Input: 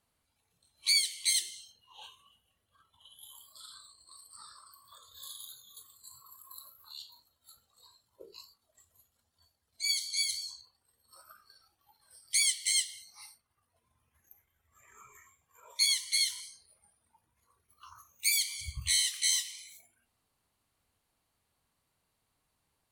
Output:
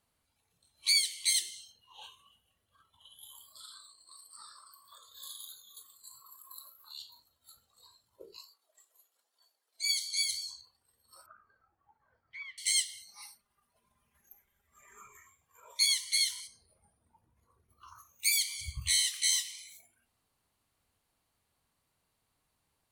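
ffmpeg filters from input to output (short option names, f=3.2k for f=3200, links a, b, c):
-filter_complex "[0:a]asettb=1/sr,asplit=3[a][b][c];[a]atrim=end=3.644[d];[b]atrim=start=3.64:end=6.96,asetpts=PTS-STARTPTS,afade=t=in:d=0.004:c=qsin,afade=t=out:st=3.316:d=0.004:c=qsin,highpass=f=310:p=1[e];[c]atrim=start=6.956[f];[d][e]acrossfade=d=0.004:c1=hsin:c2=qsin[g];[g][f]acrossfade=d=0.004:c1=qsin:c2=hsin,asettb=1/sr,asplit=3[h][i][j];[h]atrim=end=8.374[k];[i]atrim=start=8.37:end=10.18,asetpts=PTS-STARTPTS,afade=t=in:d=0.004:c=qsin,afade=t=out:st=1.806:d=0.004:c=qsin,highpass=f=370:w=0.5412,highpass=f=370:w=1.3066[l];[j]atrim=start=10.176[m];[k][l]acrossfade=d=0.004:c1=hsin:c2=qsin[n];[n][m]acrossfade=d=0.004:c1=qsin:c2=hsin,asettb=1/sr,asplit=3[o][p][q];[o]atrim=end=11.264[r];[p]atrim=start=11.26:end=12.58,asetpts=PTS-STARTPTS,afade=t=in:d=0.004:c=qsin,afade=t=out:st=1.316:d=0.004:c=qsin,lowpass=f=1.8k:w=0.5412,lowpass=f=1.8k:w=1.3066[s];[q]atrim=start=12.576[t];[r][s]acrossfade=d=0.004:c1=hsin:c2=qsin[u];[u][t]acrossfade=d=0.004:c1=qsin:c2=hsin,asettb=1/sr,asplit=3[v][w][x];[v]atrim=end=13.084[y];[w]atrim=start=13.08:end=15.08,asetpts=PTS-STARTPTS,afade=t=in:d=0.004:c=qsin,afade=t=out:st=1.996:d=0.004:c=qsin,aecho=1:1:5:0.74,atrim=end_sample=88200[z];[x]atrim=start=15.076[aa];[y][z]acrossfade=d=0.004:c1=hsin:c2=qsin[ab];[ab][aa]acrossfade=d=0.004:c1=qsin:c2=hsin,asettb=1/sr,asplit=3[ac][ad][ae];[ac]atrim=end=16.474[af];[ad]atrim=start=16.47:end=17.88,asetpts=PTS-STARTPTS,afade=t=in:d=0.004:c=qsin,afade=t=out:st=1.406:d=0.004:c=qsin,tiltshelf=f=970:g=7[ag];[ae]atrim=start=17.876[ah];[af][ag]acrossfade=d=0.004:c1=hsin:c2=qsin[ai];[ai][ah]acrossfade=d=0.004:c1=qsin:c2=hsin"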